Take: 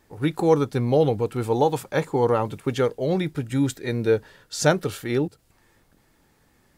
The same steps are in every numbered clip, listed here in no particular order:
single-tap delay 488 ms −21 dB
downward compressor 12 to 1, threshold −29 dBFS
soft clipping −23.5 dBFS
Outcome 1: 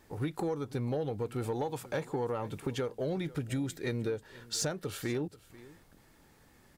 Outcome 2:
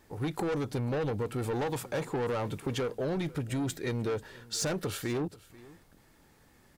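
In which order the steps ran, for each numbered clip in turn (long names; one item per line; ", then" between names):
downward compressor, then single-tap delay, then soft clipping
soft clipping, then downward compressor, then single-tap delay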